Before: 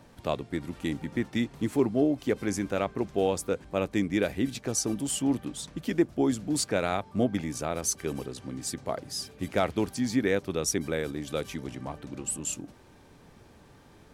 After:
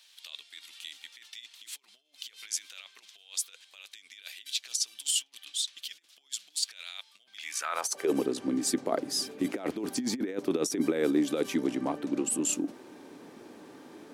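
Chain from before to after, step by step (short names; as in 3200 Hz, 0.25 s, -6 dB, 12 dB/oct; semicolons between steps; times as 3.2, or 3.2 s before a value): negative-ratio compressor -31 dBFS, ratio -0.5; high-pass sweep 3400 Hz -> 290 Hz, 7.39–8.18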